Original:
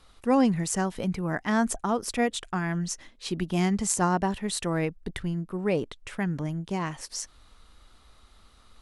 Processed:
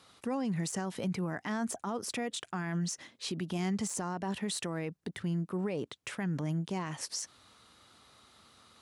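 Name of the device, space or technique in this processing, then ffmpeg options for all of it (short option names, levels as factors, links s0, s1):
broadcast voice chain: -af "highpass=f=100:w=0.5412,highpass=f=100:w=1.3066,deesser=0.55,acompressor=threshold=0.0501:ratio=6,equalizer=f=5900:t=o:w=1.6:g=2,alimiter=level_in=1.33:limit=0.0631:level=0:latency=1:release=50,volume=0.75"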